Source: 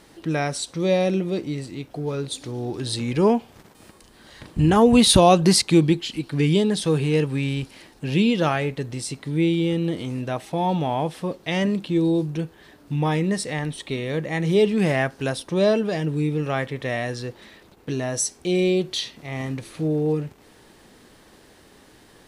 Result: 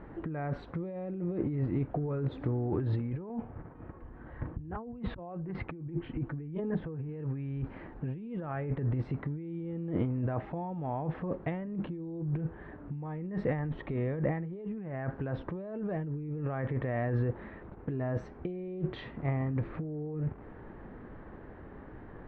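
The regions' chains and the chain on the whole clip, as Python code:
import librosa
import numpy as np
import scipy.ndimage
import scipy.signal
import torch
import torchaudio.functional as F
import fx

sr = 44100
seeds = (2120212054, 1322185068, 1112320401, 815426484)

y = fx.chain(x, sr, fx.air_absorb(metres=350.0),
    fx.notch_comb(f0_hz=200.0), at=(3.29, 7.09))
y = scipy.signal.sosfilt(scipy.signal.butter(4, 1700.0, 'lowpass', fs=sr, output='sos'), y)
y = fx.low_shelf(y, sr, hz=140.0, db=10.0)
y = fx.over_compress(y, sr, threshold_db=-29.0, ratio=-1.0)
y = F.gain(torch.from_numpy(y), -6.0).numpy()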